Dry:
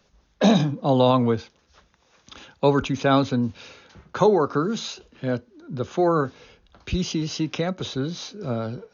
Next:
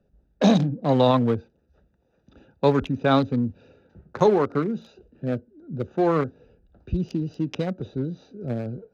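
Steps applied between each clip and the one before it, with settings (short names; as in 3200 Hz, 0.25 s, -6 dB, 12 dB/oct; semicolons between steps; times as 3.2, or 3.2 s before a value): Wiener smoothing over 41 samples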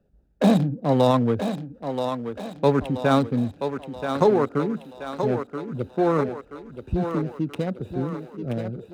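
median filter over 9 samples; thinning echo 0.979 s, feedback 53%, high-pass 250 Hz, level -6.5 dB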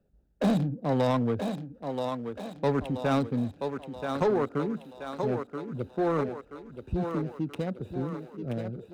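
soft clip -13.5 dBFS, distortion -16 dB; gain -4.5 dB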